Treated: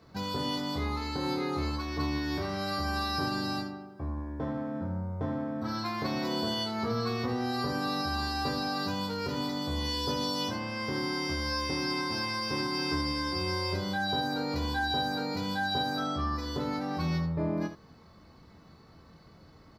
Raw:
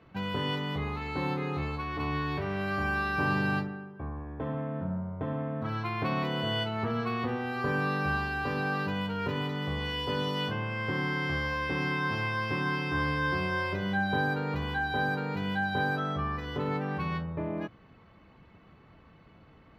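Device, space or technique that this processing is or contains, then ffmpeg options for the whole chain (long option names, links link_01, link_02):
over-bright horn tweeter: -af "highshelf=frequency=3700:width_type=q:width=3:gain=9,alimiter=limit=-22dB:level=0:latency=1:release=158,aecho=1:1:13|24|78:0.224|0.531|0.335"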